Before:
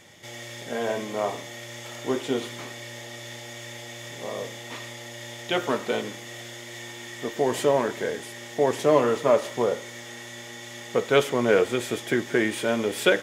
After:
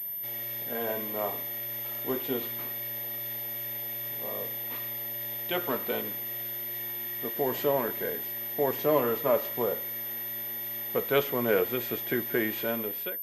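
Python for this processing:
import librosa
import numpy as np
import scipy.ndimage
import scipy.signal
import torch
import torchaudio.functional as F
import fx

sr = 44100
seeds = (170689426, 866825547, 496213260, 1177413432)

y = fx.fade_out_tail(x, sr, length_s=0.6)
y = fx.pwm(y, sr, carrier_hz=13000.0)
y = y * librosa.db_to_amplitude(-5.5)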